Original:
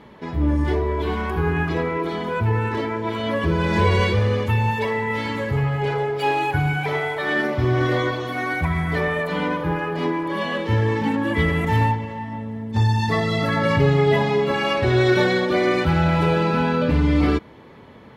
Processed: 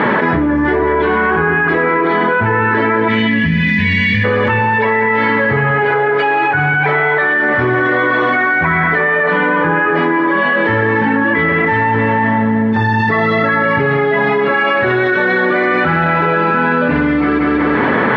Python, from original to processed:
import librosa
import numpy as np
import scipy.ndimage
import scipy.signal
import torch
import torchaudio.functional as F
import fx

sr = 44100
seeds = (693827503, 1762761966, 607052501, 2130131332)

y = scipy.signal.sosfilt(scipy.signal.butter(2, 190.0, 'highpass', fs=sr, output='sos'), x)
y = fx.spec_box(y, sr, start_s=3.08, length_s=1.16, low_hz=280.0, high_hz=1700.0, gain_db=-27)
y = scipy.signal.sosfilt(scipy.signal.butter(2, 2300.0, 'lowpass', fs=sr, output='sos'), y)
y = fx.peak_eq(y, sr, hz=1600.0, db=10.5, octaves=0.77)
y = fx.echo_feedback(y, sr, ms=190, feedback_pct=34, wet_db=-12.0)
y = fx.env_flatten(y, sr, amount_pct=100)